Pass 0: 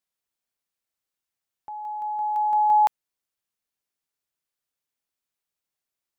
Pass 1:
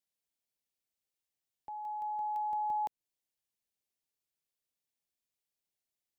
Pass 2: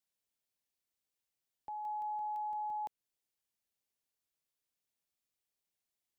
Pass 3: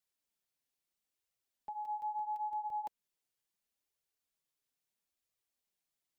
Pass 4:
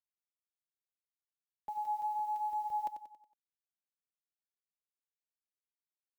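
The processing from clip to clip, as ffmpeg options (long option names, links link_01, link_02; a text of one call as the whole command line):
ffmpeg -i in.wav -filter_complex "[0:a]equalizer=frequency=1300:width_type=o:width=0.87:gain=-9.5,acrossover=split=490[link_01][link_02];[link_02]acompressor=threshold=-31dB:ratio=10[link_03];[link_01][link_03]amix=inputs=2:normalize=0,volume=-3.5dB" out.wav
ffmpeg -i in.wav -af "alimiter=level_in=11dB:limit=-24dB:level=0:latency=1,volume=-11dB" out.wav
ffmpeg -i in.wav -af "flanger=delay=1.4:depth=6.4:regen=-17:speed=0.75:shape=triangular,volume=3.5dB" out.wav
ffmpeg -i in.wav -filter_complex "[0:a]acrusher=bits=10:mix=0:aa=0.000001,asplit=2[link_01][link_02];[link_02]aecho=0:1:92|184|276|368|460:0.335|0.154|0.0709|0.0326|0.015[link_03];[link_01][link_03]amix=inputs=2:normalize=0,volume=2.5dB" out.wav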